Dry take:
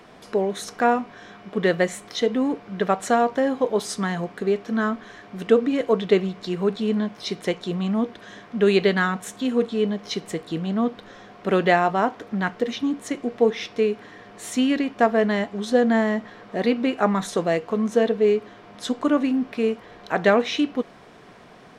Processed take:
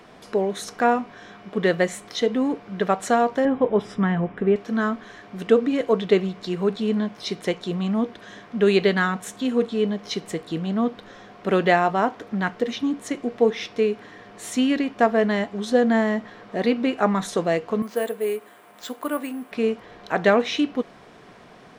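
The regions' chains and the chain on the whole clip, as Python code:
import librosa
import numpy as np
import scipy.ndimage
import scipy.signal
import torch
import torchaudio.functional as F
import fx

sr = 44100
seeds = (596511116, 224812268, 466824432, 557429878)

y = fx.chain(x, sr, fx.savgol(points=25),
    fx.low_shelf(hz=180.0, db=11.0), at=(3.45, 4.56))
y = fx.chain(y, sr, fx.highpass(hz=760.0, slope=6),
    fx.high_shelf(hz=4300.0, db=-8.0),
    fx.resample_bad(factor=4, down='none', up='hold'), at=(17.82, 19.52))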